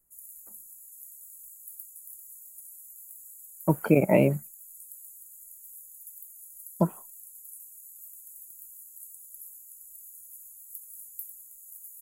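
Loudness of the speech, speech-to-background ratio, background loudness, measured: −25.0 LKFS, 19.0 dB, −44.0 LKFS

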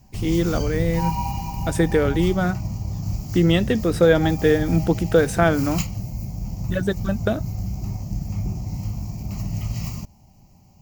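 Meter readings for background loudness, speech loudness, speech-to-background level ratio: −28.5 LKFS, −21.5 LKFS, 7.0 dB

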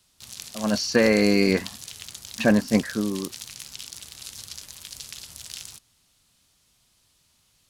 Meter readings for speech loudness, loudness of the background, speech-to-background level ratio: −22.5 LKFS, −37.5 LKFS, 15.0 dB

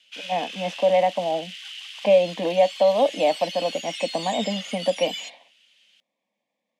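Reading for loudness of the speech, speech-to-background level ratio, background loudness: −23.5 LKFS, 10.5 dB, −34.0 LKFS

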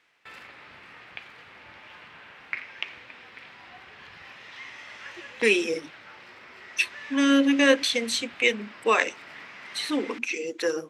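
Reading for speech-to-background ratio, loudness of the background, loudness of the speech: 17.5 dB, −42.0 LKFS, −24.5 LKFS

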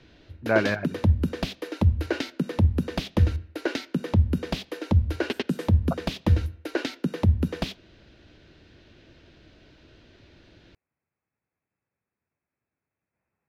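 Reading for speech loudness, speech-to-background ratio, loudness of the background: −26.5 LKFS, 0.0 dB, −26.5 LKFS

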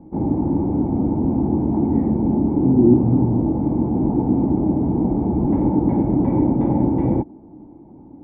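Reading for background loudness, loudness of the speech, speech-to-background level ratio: −19.5 LKFS, −21.0 LKFS, −1.5 dB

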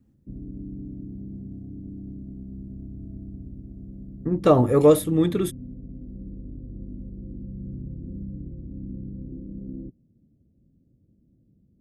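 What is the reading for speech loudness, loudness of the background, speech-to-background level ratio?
−19.5 LKFS, −39.0 LKFS, 19.5 dB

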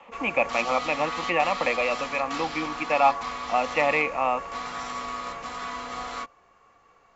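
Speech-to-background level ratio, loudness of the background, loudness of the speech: 7.5 dB, −33.0 LKFS, −25.5 LKFS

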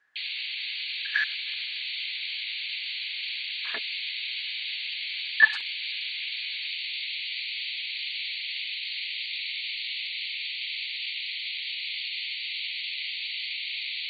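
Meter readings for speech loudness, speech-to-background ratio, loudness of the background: −26.0 LKFS, 4.5 dB, −30.5 LKFS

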